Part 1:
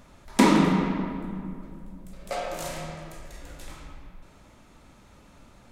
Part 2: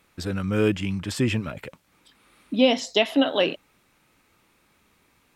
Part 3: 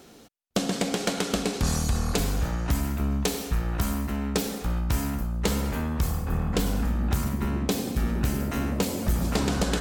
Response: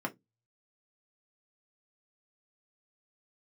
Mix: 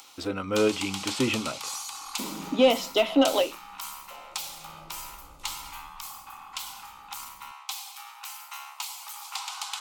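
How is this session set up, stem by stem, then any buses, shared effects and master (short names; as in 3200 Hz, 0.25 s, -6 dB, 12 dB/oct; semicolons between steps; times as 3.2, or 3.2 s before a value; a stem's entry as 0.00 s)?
4.59 s -19.5 dB -> 4.82 s -9 dB, 1.80 s, no send, dry
-6.5 dB, 0.00 s, send -11 dB, overdrive pedal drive 16 dB, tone 2500 Hz, clips at -5.5 dBFS; ending taper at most 240 dB/s
0.0 dB, 0.00 s, no send, upward compressor, threshold -37 dBFS; rippled Chebyshev high-pass 790 Hz, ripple 3 dB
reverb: on, RT60 0.15 s, pre-delay 3 ms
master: bell 1700 Hz -14 dB 0.34 oct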